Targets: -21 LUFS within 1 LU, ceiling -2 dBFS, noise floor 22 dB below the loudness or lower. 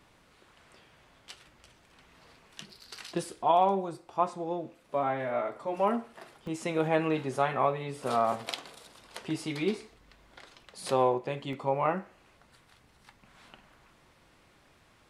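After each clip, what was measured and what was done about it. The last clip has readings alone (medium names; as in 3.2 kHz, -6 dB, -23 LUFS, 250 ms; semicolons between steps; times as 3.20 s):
dropouts 2; longest dropout 2.0 ms; loudness -30.5 LUFS; peak level -12.5 dBFS; loudness target -21.0 LUFS
-> interpolate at 6.47/11.53 s, 2 ms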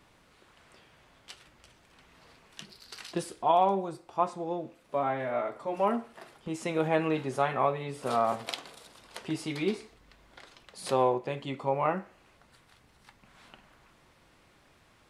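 dropouts 0; loudness -30.5 LUFS; peak level -12.5 dBFS; loudness target -21.0 LUFS
-> trim +9.5 dB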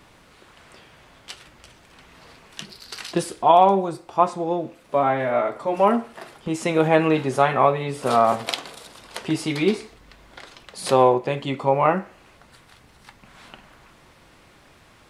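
loudness -21.0 LUFS; peak level -3.0 dBFS; noise floor -53 dBFS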